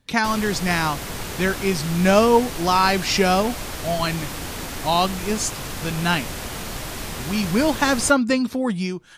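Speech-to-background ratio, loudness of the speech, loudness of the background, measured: 9.5 dB, -21.0 LUFS, -30.5 LUFS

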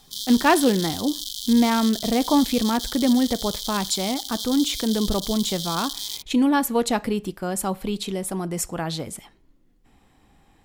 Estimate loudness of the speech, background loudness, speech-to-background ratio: -23.0 LUFS, -29.5 LUFS, 6.5 dB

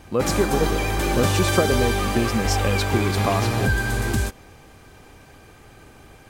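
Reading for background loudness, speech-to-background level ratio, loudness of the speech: -23.0 LUFS, -2.5 dB, -25.5 LUFS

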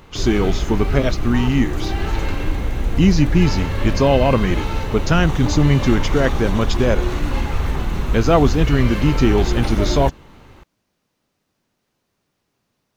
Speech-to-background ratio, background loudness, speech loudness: 4.5 dB, -23.5 LUFS, -19.0 LUFS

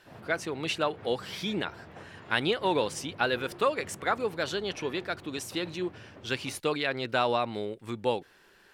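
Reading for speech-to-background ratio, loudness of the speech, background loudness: 18.0 dB, -31.0 LUFS, -49.0 LUFS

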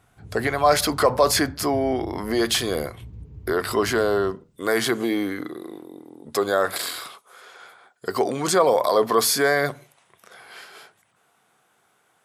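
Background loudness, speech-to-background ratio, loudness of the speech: -41.5 LUFS, 19.5 dB, -22.0 LUFS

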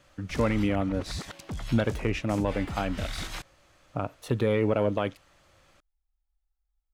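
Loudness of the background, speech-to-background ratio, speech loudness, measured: -38.5 LUFS, 9.5 dB, -29.0 LUFS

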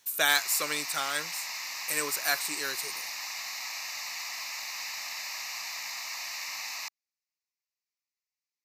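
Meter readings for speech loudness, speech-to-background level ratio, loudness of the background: -29.5 LUFS, 5.5 dB, -35.0 LUFS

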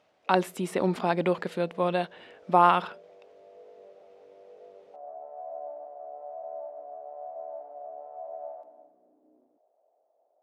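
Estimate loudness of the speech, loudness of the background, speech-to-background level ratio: -26.0 LUFS, -44.0 LUFS, 18.0 dB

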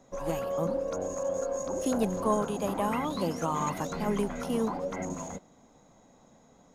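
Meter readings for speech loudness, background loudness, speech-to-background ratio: -32.5 LUFS, -34.5 LUFS, 2.0 dB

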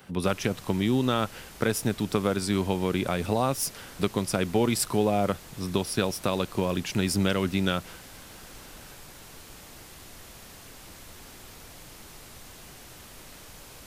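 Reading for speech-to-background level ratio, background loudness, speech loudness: 18.0 dB, -45.5 LUFS, -27.5 LUFS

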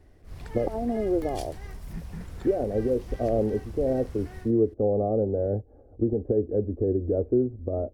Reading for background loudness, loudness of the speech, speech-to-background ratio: -42.0 LUFS, -27.0 LUFS, 15.0 dB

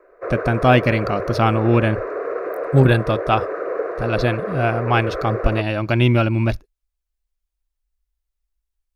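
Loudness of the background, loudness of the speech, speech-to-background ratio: -26.5 LUFS, -19.5 LUFS, 7.0 dB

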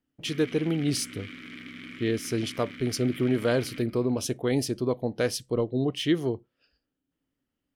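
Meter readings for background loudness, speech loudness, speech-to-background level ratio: -42.5 LUFS, -28.0 LUFS, 14.5 dB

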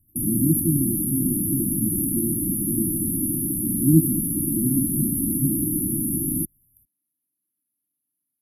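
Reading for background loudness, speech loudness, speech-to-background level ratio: -23.0 LUFS, -26.0 LUFS, -3.0 dB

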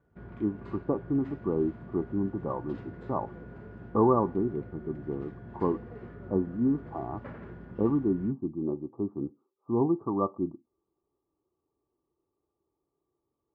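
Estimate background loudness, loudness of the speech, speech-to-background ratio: -46.0 LUFS, -31.0 LUFS, 15.0 dB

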